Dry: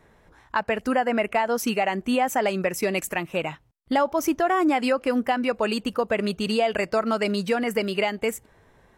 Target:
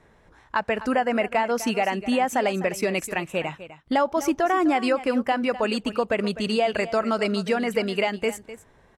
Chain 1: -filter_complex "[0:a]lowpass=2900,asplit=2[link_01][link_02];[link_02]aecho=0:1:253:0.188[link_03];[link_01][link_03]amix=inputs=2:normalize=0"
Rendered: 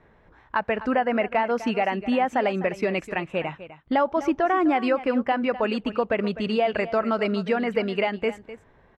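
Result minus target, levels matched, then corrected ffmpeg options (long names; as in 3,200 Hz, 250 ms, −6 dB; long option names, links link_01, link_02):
8,000 Hz band −15.5 dB
-filter_complex "[0:a]lowpass=10000,asplit=2[link_01][link_02];[link_02]aecho=0:1:253:0.188[link_03];[link_01][link_03]amix=inputs=2:normalize=0"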